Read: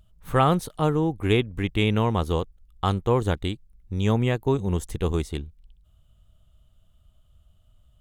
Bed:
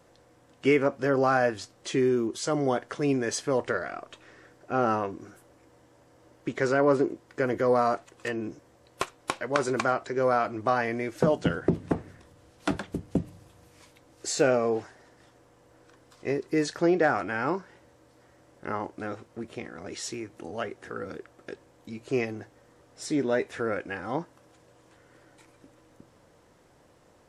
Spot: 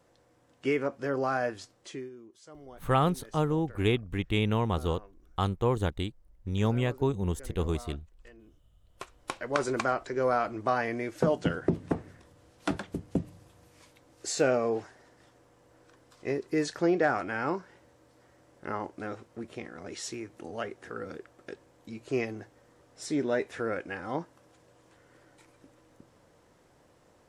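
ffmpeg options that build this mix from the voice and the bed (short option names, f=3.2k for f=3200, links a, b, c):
-filter_complex "[0:a]adelay=2550,volume=-5dB[a];[1:a]volume=14.5dB,afade=t=out:st=1.71:d=0.39:silence=0.141254,afade=t=in:st=8.85:d=0.69:silence=0.0944061[b];[a][b]amix=inputs=2:normalize=0"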